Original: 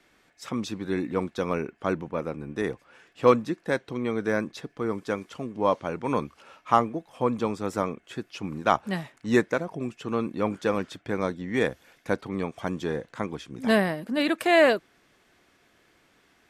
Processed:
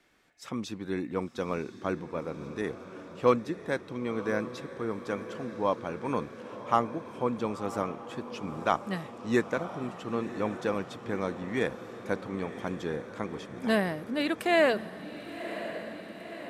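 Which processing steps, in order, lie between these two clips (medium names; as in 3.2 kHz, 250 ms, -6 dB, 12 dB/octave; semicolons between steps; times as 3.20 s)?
echo that smears into a reverb 1032 ms, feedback 65%, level -12 dB; trim -4.5 dB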